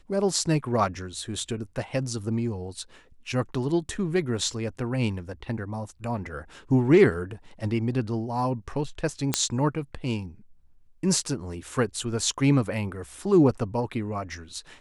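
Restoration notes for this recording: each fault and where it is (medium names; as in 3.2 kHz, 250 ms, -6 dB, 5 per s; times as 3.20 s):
9.34 s: pop -5 dBFS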